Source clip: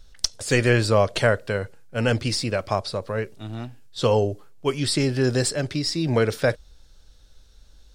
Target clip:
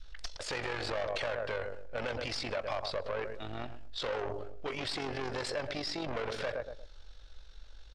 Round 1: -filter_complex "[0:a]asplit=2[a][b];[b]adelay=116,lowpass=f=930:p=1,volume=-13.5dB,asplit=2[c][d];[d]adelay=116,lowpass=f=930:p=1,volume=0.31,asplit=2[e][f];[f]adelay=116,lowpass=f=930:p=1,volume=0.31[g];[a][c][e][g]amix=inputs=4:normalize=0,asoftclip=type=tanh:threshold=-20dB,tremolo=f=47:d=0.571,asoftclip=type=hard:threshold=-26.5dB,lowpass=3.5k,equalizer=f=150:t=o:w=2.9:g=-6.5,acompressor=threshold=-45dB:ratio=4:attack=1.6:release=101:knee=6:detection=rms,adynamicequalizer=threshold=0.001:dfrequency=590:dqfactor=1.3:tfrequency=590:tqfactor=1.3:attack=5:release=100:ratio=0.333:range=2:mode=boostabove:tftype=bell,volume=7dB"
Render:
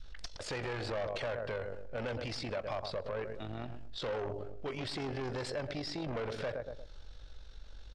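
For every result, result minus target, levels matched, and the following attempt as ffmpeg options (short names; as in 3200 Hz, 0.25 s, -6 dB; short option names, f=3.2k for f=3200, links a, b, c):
compressor: peak gain reduction +6 dB; 125 Hz band +5.0 dB; soft clip: distortion -4 dB
-filter_complex "[0:a]asplit=2[a][b];[b]adelay=116,lowpass=f=930:p=1,volume=-13.5dB,asplit=2[c][d];[d]adelay=116,lowpass=f=930:p=1,volume=0.31,asplit=2[e][f];[f]adelay=116,lowpass=f=930:p=1,volume=0.31[g];[a][c][e][g]amix=inputs=4:normalize=0,asoftclip=type=tanh:threshold=-20dB,tremolo=f=47:d=0.571,asoftclip=type=hard:threshold=-26.5dB,lowpass=3.5k,equalizer=f=150:t=o:w=2.9:g=-6.5,acompressor=threshold=-38.5dB:ratio=4:attack=1.6:release=101:knee=6:detection=rms,adynamicequalizer=threshold=0.001:dfrequency=590:dqfactor=1.3:tfrequency=590:tqfactor=1.3:attack=5:release=100:ratio=0.333:range=2:mode=boostabove:tftype=bell,volume=7dB"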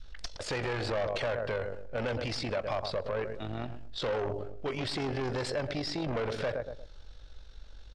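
125 Hz band +5.0 dB; soft clip: distortion -4 dB
-filter_complex "[0:a]asplit=2[a][b];[b]adelay=116,lowpass=f=930:p=1,volume=-13.5dB,asplit=2[c][d];[d]adelay=116,lowpass=f=930:p=1,volume=0.31,asplit=2[e][f];[f]adelay=116,lowpass=f=930:p=1,volume=0.31[g];[a][c][e][g]amix=inputs=4:normalize=0,asoftclip=type=tanh:threshold=-20dB,tremolo=f=47:d=0.571,asoftclip=type=hard:threshold=-26.5dB,lowpass=3.5k,equalizer=f=150:t=o:w=2.9:g=-16,acompressor=threshold=-38.5dB:ratio=4:attack=1.6:release=101:knee=6:detection=rms,adynamicequalizer=threshold=0.001:dfrequency=590:dqfactor=1.3:tfrequency=590:tqfactor=1.3:attack=5:release=100:ratio=0.333:range=2:mode=boostabove:tftype=bell,volume=7dB"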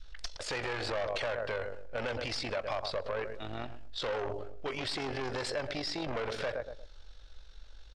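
soft clip: distortion -4 dB
-filter_complex "[0:a]asplit=2[a][b];[b]adelay=116,lowpass=f=930:p=1,volume=-13.5dB,asplit=2[c][d];[d]adelay=116,lowpass=f=930:p=1,volume=0.31,asplit=2[e][f];[f]adelay=116,lowpass=f=930:p=1,volume=0.31[g];[a][c][e][g]amix=inputs=4:normalize=0,asoftclip=type=tanh:threshold=-26.5dB,tremolo=f=47:d=0.571,asoftclip=type=hard:threshold=-26.5dB,lowpass=3.5k,equalizer=f=150:t=o:w=2.9:g=-16,acompressor=threshold=-38.5dB:ratio=4:attack=1.6:release=101:knee=6:detection=rms,adynamicequalizer=threshold=0.001:dfrequency=590:dqfactor=1.3:tfrequency=590:tqfactor=1.3:attack=5:release=100:ratio=0.333:range=2:mode=boostabove:tftype=bell,volume=7dB"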